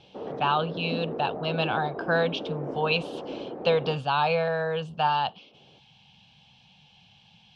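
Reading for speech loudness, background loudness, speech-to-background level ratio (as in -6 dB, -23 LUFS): -27.0 LUFS, -36.0 LUFS, 9.0 dB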